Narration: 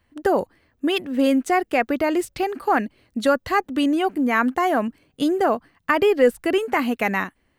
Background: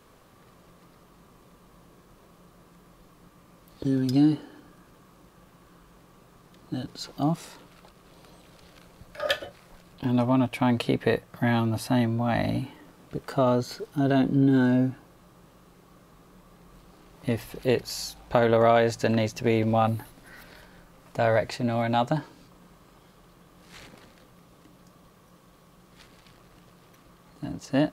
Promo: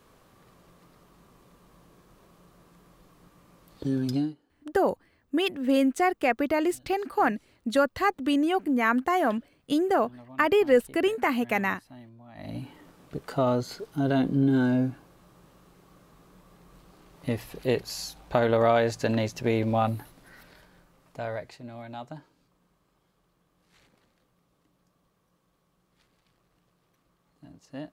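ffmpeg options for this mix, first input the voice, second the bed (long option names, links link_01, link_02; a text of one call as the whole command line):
ffmpeg -i stem1.wav -i stem2.wav -filter_complex "[0:a]adelay=4500,volume=-4dB[link_01];[1:a]volume=20dB,afade=type=out:start_time=4.1:duration=0.24:silence=0.0794328,afade=type=in:start_time=12.35:duration=0.44:silence=0.0749894,afade=type=out:start_time=19.8:duration=1.83:silence=0.211349[link_02];[link_01][link_02]amix=inputs=2:normalize=0" out.wav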